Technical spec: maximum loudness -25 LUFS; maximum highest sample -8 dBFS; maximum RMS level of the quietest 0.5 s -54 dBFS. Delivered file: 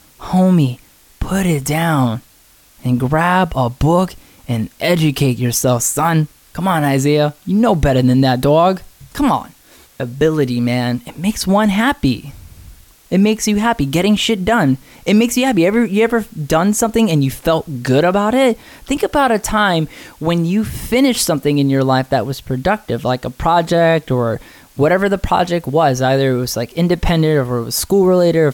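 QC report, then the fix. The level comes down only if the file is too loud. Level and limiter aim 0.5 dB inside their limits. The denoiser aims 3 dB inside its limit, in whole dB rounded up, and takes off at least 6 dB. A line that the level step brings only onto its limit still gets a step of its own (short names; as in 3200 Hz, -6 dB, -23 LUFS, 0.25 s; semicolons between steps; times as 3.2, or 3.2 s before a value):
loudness -15.5 LUFS: fail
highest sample -3.5 dBFS: fail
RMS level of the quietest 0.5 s -49 dBFS: fail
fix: gain -10 dB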